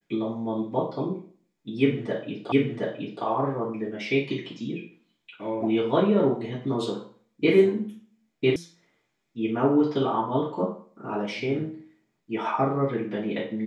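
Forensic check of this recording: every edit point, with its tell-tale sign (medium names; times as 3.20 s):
2.52 s: repeat of the last 0.72 s
8.56 s: sound stops dead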